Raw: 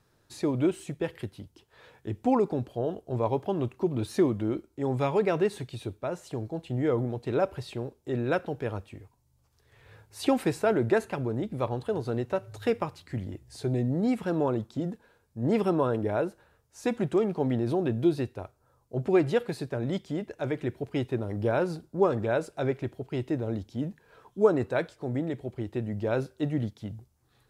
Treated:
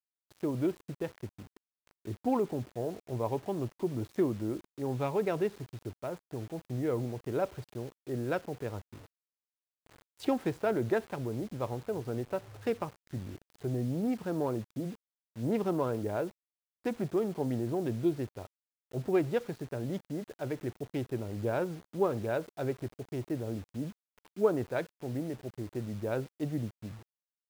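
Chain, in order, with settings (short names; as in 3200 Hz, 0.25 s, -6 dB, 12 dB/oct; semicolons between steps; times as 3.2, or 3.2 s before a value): Wiener smoothing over 15 samples; bit-crush 8-bit; gain -5 dB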